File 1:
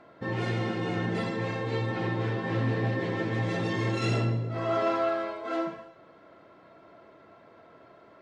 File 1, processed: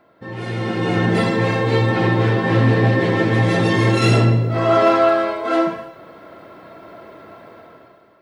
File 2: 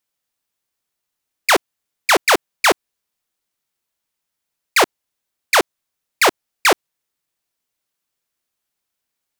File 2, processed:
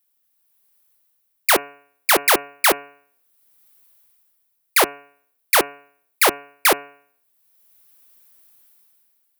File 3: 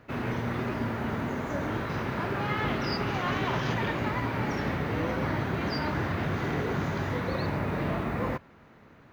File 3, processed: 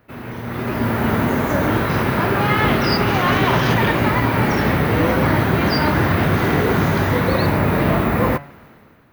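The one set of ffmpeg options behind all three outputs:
-af "aexciter=amount=4:drive=4.7:freq=9400,dynaudnorm=framelen=160:gausssize=9:maxgain=15dB,bandreject=frequency=142.2:width_type=h:width=4,bandreject=frequency=284.4:width_type=h:width=4,bandreject=frequency=426.6:width_type=h:width=4,bandreject=frequency=568.8:width_type=h:width=4,bandreject=frequency=711:width_type=h:width=4,bandreject=frequency=853.2:width_type=h:width=4,bandreject=frequency=995.4:width_type=h:width=4,bandreject=frequency=1137.6:width_type=h:width=4,bandreject=frequency=1279.8:width_type=h:width=4,bandreject=frequency=1422:width_type=h:width=4,bandreject=frequency=1564.2:width_type=h:width=4,bandreject=frequency=1706.4:width_type=h:width=4,bandreject=frequency=1848.6:width_type=h:width=4,bandreject=frequency=1990.8:width_type=h:width=4,bandreject=frequency=2133:width_type=h:width=4,bandreject=frequency=2275.2:width_type=h:width=4,bandreject=frequency=2417.4:width_type=h:width=4,bandreject=frequency=2559.6:width_type=h:width=4,bandreject=frequency=2701.8:width_type=h:width=4,bandreject=frequency=2844:width_type=h:width=4,volume=-1dB"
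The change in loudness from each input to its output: +12.5, −1.0, +12.5 LU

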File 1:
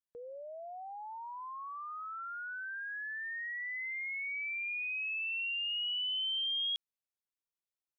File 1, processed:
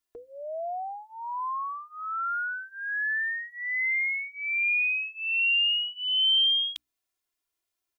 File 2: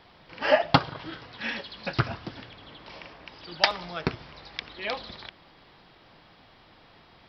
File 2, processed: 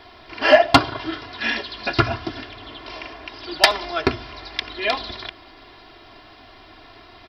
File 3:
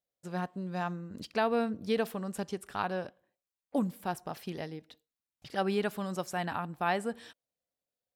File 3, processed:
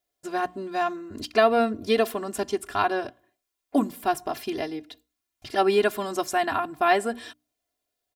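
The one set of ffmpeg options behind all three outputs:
-filter_complex "[0:a]bandreject=frequency=60:width_type=h:width=6,bandreject=frequency=120:width_type=h:width=6,bandreject=frequency=180:width_type=h:width=6,bandreject=frequency=240:width_type=h:width=6,bandreject=frequency=300:width_type=h:width=6,aecho=1:1:2.9:0.94,asplit=2[link_01][link_02];[link_02]aeval=exprs='0.944*sin(PI/2*2.51*val(0)/0.944)':channel_layout=same,volume=-10dB[link_03];[link_01][link_03]amix=inputs=2:normalize=0"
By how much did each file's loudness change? +10.0, +8.0, +8.5 LU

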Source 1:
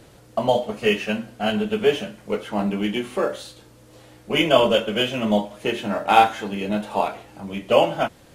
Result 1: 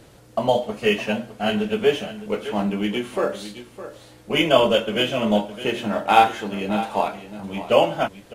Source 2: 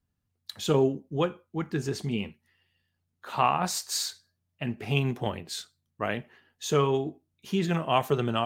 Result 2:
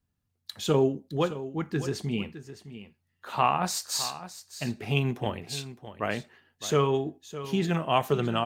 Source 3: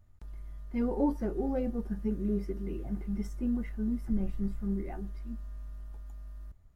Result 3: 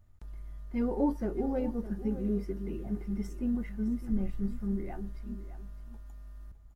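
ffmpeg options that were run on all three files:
-af "aecho=1:1:611:0.211"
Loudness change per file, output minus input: 0.0, 0.0, 0.0 LU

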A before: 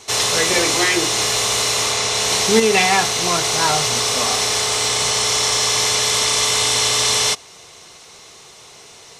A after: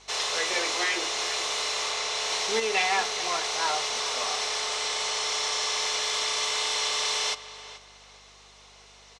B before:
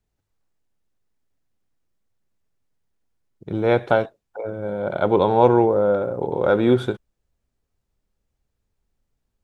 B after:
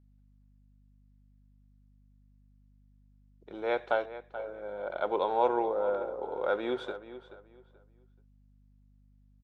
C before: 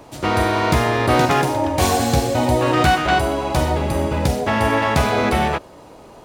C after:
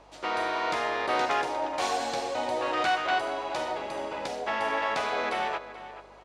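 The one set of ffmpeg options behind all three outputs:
-filter_complex "[0:a]highpass=510,lowpass=5700,asplit=2[link_01][link_02];[link_02]adelay=431,lowpass=frequency=3600:poles=1,volume=-13.5dB,asplit=2[link_03][link_04];[link_04]adelay=431,lowpass=frequency=3600:poles=1,volume=0.25,asplit=2[link_05][link_06];[link_06]adelay=431,lowpass=frequency=3600:poles=1,volume=0.25[link_07];[link_01][link_03][link_05][link_07]amix=inputs=4:normalize=0,aeval=exprs='val(0)+0.00251*(sin(2*PI*50*n/s)+sin(2*PI*2*50*n/s)/2+sin(2*PI*3*50*n/s)/3+sin(2*PI*4*50*n/s)/4+sin(2*PI*5*50*n/s)/5)':channel_layout=same,volume=-8.5dB"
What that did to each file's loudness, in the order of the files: −10.5, −12.5, −11.0 LU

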